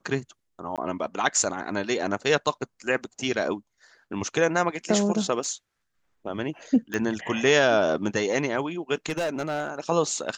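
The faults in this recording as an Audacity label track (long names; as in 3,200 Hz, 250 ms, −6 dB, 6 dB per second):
0.760000	0.780000	drop-out 17 ms
5.440000	5.440000	drop-out 2.5 ms
6.940000	6.940000	click −15 dBFS
9.060000	9.790000	clipping −23.5 dBFS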